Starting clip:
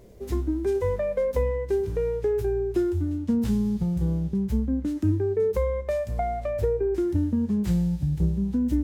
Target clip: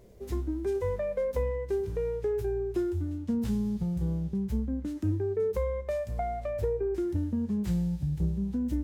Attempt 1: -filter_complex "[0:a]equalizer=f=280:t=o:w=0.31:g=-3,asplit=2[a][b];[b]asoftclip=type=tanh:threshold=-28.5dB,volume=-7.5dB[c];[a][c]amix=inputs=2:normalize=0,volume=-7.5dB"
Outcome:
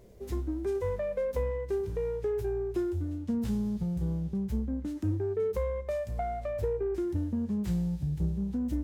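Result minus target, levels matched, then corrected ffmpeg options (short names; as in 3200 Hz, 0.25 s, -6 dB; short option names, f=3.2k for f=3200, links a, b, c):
soft clip: distortion +12 dB
-filter_complex "[0:a]equalizer=f=280:t=o:w=0.31:g=-3,asplit=2[a][b];[b]asoftclip=type=tanh:threshold=-17.5dB,volume=-7.5dB[c];[a][c]amix=inputs=2:normalize=0,volume=-7.5dB"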